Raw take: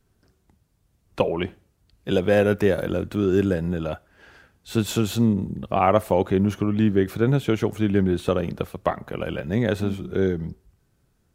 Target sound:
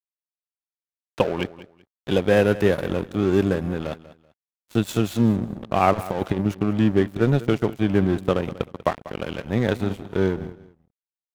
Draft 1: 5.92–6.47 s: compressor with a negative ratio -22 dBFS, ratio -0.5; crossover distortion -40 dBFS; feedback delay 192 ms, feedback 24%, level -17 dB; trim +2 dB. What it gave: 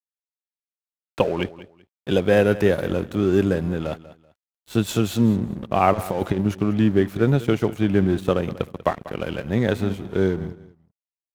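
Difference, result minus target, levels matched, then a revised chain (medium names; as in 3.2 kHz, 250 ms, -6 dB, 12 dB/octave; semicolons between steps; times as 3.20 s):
crossover distortion: distortion -7 dB
5.92–6.47 s: compressor with a negative ratio -22 dBFS, ratio -0.5; crossover distortion -32.5 dBFS; feedback delay 192 ms, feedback 24%, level -17 dB; trim +2 dB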